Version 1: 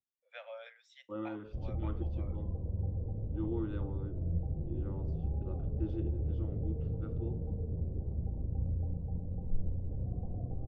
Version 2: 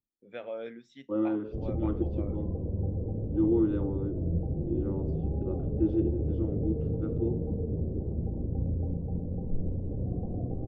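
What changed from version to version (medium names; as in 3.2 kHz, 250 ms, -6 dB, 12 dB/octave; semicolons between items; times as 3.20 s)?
first voice: remove steep high-pass 510 Hz 96 dB/octave; master: add peaking EQ 320 Hz +12.5 dB 2.4 oct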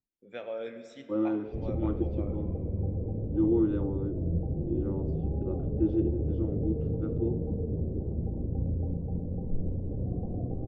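first voice: remove low-pass 4.2 kHz 12 dB/octave; reverb: on, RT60 3.0 s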